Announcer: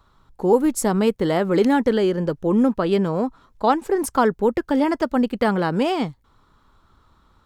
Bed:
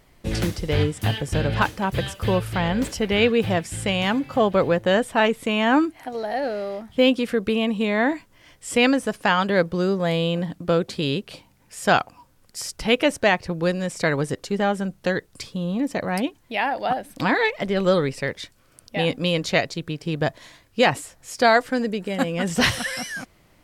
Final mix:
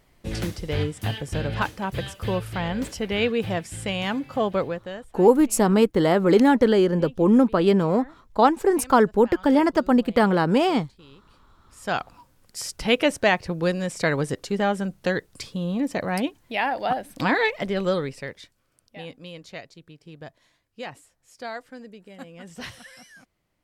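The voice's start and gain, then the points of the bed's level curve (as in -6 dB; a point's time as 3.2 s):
4.75 s, +1.0 dB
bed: 4.58 s -4.5 dB
5.21 s -26 dB
11.21 s -26 dB
12.21 s -1 dB
17.55 s -1 dB
19.24 s -18 dB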